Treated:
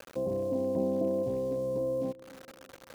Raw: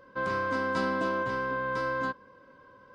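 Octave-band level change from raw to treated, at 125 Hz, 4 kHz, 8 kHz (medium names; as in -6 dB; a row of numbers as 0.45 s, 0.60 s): +1.5 dB, under -10 dB, no reading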